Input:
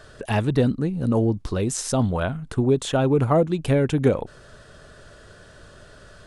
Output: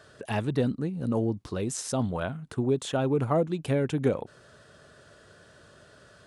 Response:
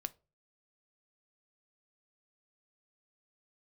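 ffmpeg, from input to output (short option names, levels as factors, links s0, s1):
-af "highpass=100,volume=0.501"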